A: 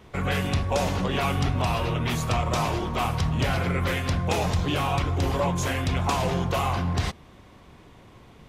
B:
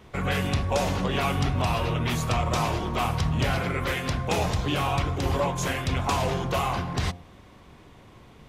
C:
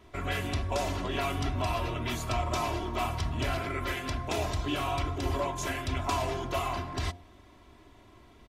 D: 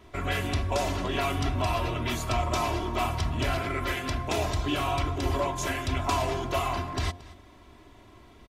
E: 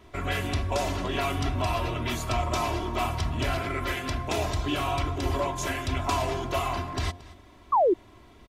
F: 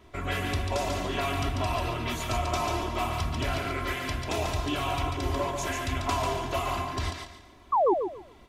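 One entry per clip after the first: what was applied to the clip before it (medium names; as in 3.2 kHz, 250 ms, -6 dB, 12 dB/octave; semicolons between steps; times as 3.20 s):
de-hum 87.93 Hz, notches 11
comb 3 ms, depth 67%; trim -6.5 dB
delay 226 ms -20 dB; trim +3 dB
painted sound fall, 7.72–7.94 s, 320–1200 Hz -20 dBFS
thinning echo 142 ms, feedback 28%, level -4 dB; trim -2 dB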